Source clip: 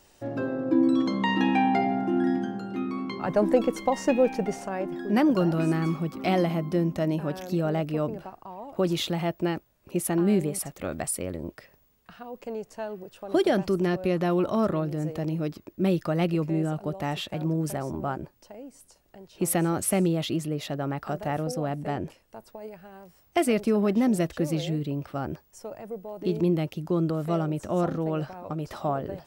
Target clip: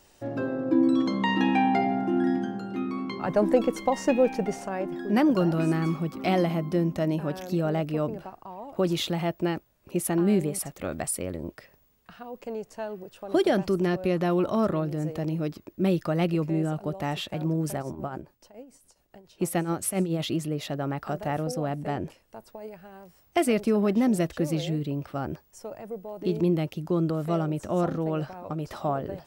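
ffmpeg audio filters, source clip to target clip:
-filter_complex "[0:a]asplit=3[a][b][c];[a]afade=t=out:st=17.81:d=0.02[d];[b]tremolo=f=7.1:d=0.68,afade=t=in:st=17.81:d=0.02,afade=t=out:st=20.18:d=0.02[e];[c]afade=t=in:st=20.18:d=0.02[f];[d][e][f]amix=inputs=3:normalize=0"

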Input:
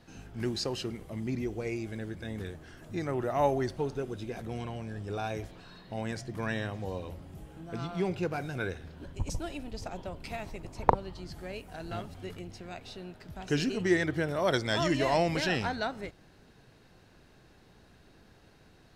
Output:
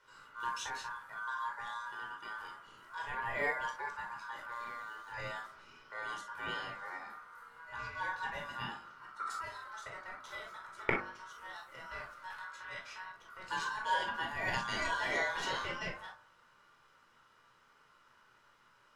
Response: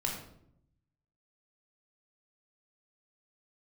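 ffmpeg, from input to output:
-filter_complex "[0:a]aeval=exprs='val(0)*sin(2*PI*1300*n/s)':c=same,bandreject=f=49.96:t=h:w=4,bandreject=f=99.92:t=h:w=4,bandreject=f=149.88:t=h:w=4,bandreject=f=199.84:t=h:w=4,bandreject=f=249.8:t=h:w=4,bandreject=f=299.76:t=h:w=4,bandreject=f=349.72:t=h:w=4,bandreject=f=399.68:t=h:w=4,bandreject=f=449.64:t=h:w=4,bandreject=f=499.6:t=h:w=4,bandreject=f=549.56:t=h:w=4,bandreject=f=599.52:t=h:w=4,bandreject=f=649.48:t=h:w=4,bandreject=f=699.44:t=h:w=4,bandreject=f=749.4:t=h:w=4,bandreject=f=799.36:t=h:w=4,bandreject=f=849.32:t=h:w=4,bandreject=f=899.28:t=h:w=4,bandreject=f=949.24:t=h:w=4,bandreject=f=999.2:t=h:w=4,bandreject=f=1.04916k:t=h:w=4,bandreject=f=1.09912k:t=h:w=4,bandreject=f=1.14908k:t=h:w=4,bandreject=f=1.19904k:t=h:w=4,bandreject=f=1.249k:t=h:w=4,bandreject=f=1.29896k:t=h:w=4,bandreject=f=1.34892k:t=h:w=4,bandreject=f=1.39888k:t=h:w=4,bandreject=f=1.44884k:t=h:w=4,bandreject=f=1.4988k:t=h:w=4,bandreject=f=1.54876k:t=h:w=4,bandreject=f=1.59872k:t=h:w=4,bandreject=f=1.64868k:t=h:w=4,bandreject=f=1.69864k:t=h:w=4[a];[1:a]atrim=start_sample=2205,atrim=end_sample=3087[b];[a][b]afir=irnorm=-1:irlink=0,asettb=1/sr,asplit=3[c][d][e];[c]atrim=end=4.524[f];[d]atrim=start=4.52:end=5.12,asetpts=PTS-STARTPTS,afade=t=in:d=0.004:c=qsin,afade=t=out:st=0.596:d=0.004:c=qsin,aeval=exprs='sgn(val(0))*max(abs(val(0))-0.00188,0)':c=same[g];[e]atrim=start=5.116[h];[f][g]acrossfade=d=0.004:c1=hsin:c2=qsin[i];[i][h]acrossfade=d=0.004:c1=qsin:c2=hsin,asettb=1/sr,asplit=3[j][k][l];[j]atrim=end=12.304[m];[k]atrim=start=12.3:end=13.12,asetpts=PTS-STARTPTS,afade=t=in:d=0.004:c=qsin,afade=t=out:st=0.816:d=0.004:c=qsin,equalizer=f=2.1k:t=o:w=1.6:g=7.5[n];[l]atrim=start=13.116[o];[m][n]acrossfade=d=0.004:c1=hsin:c2=qsin[p];[p][o]acrossfade=d=0.004:c1=qsin:c2=hsin,volume=-7.5dB"

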